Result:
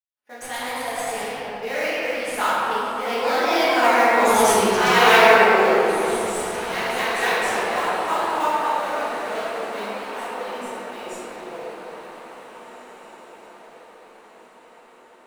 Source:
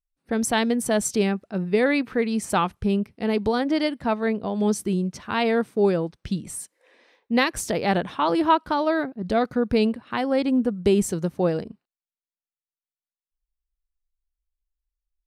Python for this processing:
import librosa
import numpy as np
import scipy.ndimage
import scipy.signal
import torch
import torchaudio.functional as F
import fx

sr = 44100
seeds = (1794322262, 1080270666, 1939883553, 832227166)

p1 = fx.doppler_pass(x, sr, speed_mps=22, closest_m=11.0, pass_at_s=4.69)
p2 = scipy.signal.sosfilt(scipy.signal.butter(2, 820.0, 'highpass', fs=sr, output='sos'), p1)
p3 = fx.sample_hold(p2, sr, seeds[0], rate_hz=7900.0, jitter_pct=20)
p4 = p2 + (p3 * 10.0 ** (-6.0 / 20.0))
p5 = fx.echo_pitch(p4, sr, ms=146, semitones=1, count=2, db_per_echo=-3.0)
p6 = p5 + fx.echo_diffused(p5, sr, ms=1889, feedback_pct=43, wet_db=-13.0, dry=0)
p7 = fx.room_shoebox(p6, sr, seeds[1], volume_m3=150.0, walls='hard', distance_m=1.4)
y = p7 * 10.0 ** (4.5 / 20.0)